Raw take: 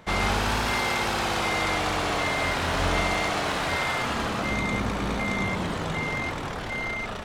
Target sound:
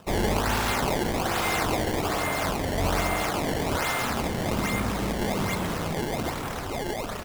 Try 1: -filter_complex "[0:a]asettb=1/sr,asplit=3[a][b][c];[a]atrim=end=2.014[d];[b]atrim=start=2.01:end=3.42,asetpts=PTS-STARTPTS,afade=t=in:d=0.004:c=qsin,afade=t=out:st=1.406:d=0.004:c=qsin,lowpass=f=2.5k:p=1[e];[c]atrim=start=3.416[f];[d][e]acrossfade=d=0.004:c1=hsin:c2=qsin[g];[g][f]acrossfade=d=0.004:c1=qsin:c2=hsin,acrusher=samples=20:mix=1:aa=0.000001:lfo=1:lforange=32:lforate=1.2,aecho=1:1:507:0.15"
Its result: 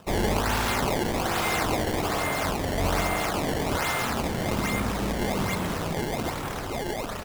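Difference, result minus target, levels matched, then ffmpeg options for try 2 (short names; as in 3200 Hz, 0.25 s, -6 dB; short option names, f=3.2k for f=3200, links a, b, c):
echo 0.172 s late
-filter_complex "[0:a]asettb=1/sr,asplit=3[a][b][c];[a]atrim=end=2.014[d];[b]atrim=start=2.01:end=3.42,asetpts=PTS-STARTPTS,afade=t=in:d=0.004:c=qsin,afade=t=out:st=1.406:d=0.004:c=qsin,lowpass=f=2.5k:p=1[e];[c]atrim=start=3.416[f];[d][e]acrossfade=d=0.004:c1=hsin:c2=qsin[g];[g][f]acrossfade=d=0.004:c1=qsin:c2=hsin,acrusher=samples=20:mix=1:aa=0.000001:lfo=1:lforange=32:lforate=1.2,aecho=1:1:335:0.15"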